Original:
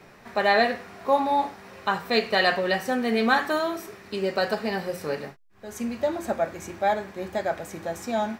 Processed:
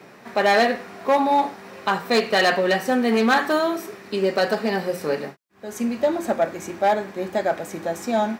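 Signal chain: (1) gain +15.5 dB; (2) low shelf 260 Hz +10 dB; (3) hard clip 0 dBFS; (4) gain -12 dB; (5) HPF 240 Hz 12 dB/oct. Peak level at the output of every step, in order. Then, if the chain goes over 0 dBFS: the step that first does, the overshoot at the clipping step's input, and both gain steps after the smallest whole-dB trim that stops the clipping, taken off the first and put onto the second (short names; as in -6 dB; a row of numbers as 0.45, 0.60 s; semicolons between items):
+8.0, +9.5, 0.0, -12.0, -7.0 dBFS; step 1, 9.5 dB; step 1 +5.5 dB, step 4 -2 dB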